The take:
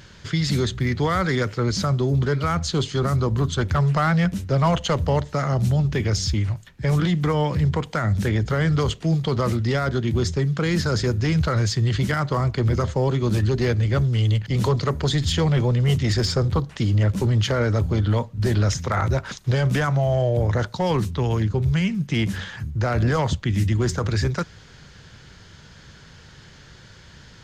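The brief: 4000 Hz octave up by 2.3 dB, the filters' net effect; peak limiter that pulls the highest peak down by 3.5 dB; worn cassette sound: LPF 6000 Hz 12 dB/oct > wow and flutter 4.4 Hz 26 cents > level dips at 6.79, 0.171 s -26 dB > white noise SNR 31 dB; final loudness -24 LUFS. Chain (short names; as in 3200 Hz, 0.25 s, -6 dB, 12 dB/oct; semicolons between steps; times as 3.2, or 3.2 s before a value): bell 4000 Hz +4 dB; limiter -15 dBFS; LPF 6000 Hz 12 dB/oct; wow and flutter 4.4 Hz 26 cents; level dips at 6.79, 0.171 s -26 dB; white noise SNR 31 dB; gain -0.5 dB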